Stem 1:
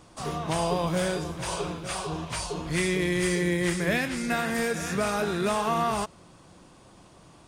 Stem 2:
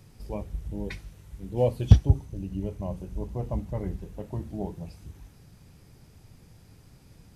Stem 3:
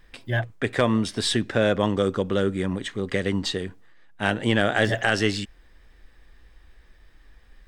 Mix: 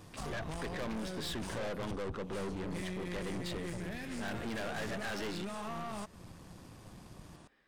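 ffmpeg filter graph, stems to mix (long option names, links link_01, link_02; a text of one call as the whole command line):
ffmpeg -i stem1.wav -i stem2.wav -i stem3.wav -filter_complex "[0:a]equalizer=frequency=200:width=1.5:gain=5.5,volume=-2dB[link_01];[1:a]volume=0dB[link_02];[2:a]highpass=190,highshelf=frequency=5100:gain=-11,volume=-5dB,asplit=2[link_03][link_04];[link_04]apad=whole_len=329588[link_05];[link_01][link_05]sidechaincompress=threshold=-33dB:ratio=3:attack=37:release=671[link_06];[link_06][link_02]amix=inputs=2:normalize=0,acompressor=threshold=-33dB:ratio=6,volume=0dB[link_07];[link_03][link_07]amix=inputs=2:normalize=0,aeval=exprs='(tanh(63.1*val(0)+0.55)-tanh(0.55))/63.1':channel_layout=same" out.wav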